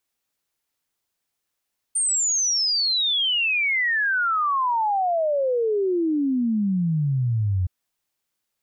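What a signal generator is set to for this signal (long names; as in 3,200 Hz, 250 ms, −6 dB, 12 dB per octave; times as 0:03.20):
exponential sine sweep 9,000 Hz → 88 Hz 5.72 s −19 dBFS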